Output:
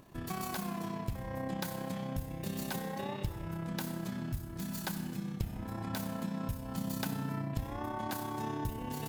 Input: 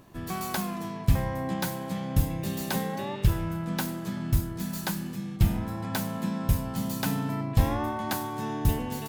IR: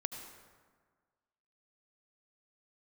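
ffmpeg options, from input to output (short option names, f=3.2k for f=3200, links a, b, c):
-filter_complex "[0:a]acompressor=threshold=-30dB:ratio=6,tremolo=f=32:d=0.519,asplit=2[a][b];[1:a]atrim=start_sample=2205[c];[b][c]afir=irnorm=-1:irlink=0,volume=0.5dB[d];[a][d]amix=inputs=2:normalize=0,volume=-7dB"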